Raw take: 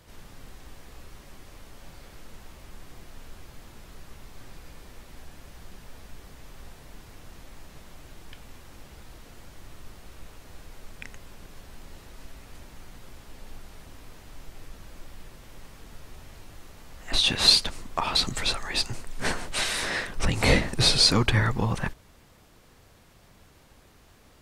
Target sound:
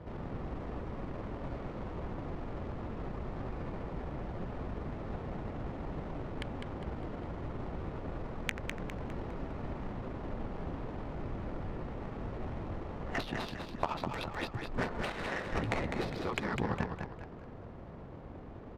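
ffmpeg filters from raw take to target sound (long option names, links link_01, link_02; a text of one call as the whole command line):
ffmpeg -i in.wav -filter_complex "[0:a]highpass=frequency=100:poles=1,atempo=1.3,afftfilt=real='re*lt(hypot(re,im),0.355)':imag='im*lt(hypot(re,im),0.355)':win_size=1024:overlap=0.75,acompressor=threshold=-41dB:ratio=16,bandreject=frequency=1600:width=23,adynamicsmooth=sensitivity=7:basefreq=800,asplit=6[link_01][link_02][link_03][link_04][link_05][link_06];[link_02]adelay=203,afreqshift=-33,volume=-5.5dB[link_07];[link_03]adelay=406,afreqshift=-66,volume=-13.2dB[link_08];[link_04]adelay=609,afreqshift=-99,volume=-21dB[link_09];[link_05]adelay=812,afreqshift=-132,volume=-28.7dB[link_10];[link_06]adelay=1015,afreqshift=-165,volume=-36.5dB[link_11];[link_01][link_07][link_08][link_09][link_10][link_11]amix=inputs=6:normalize=0,volume=12.5dB" out.wav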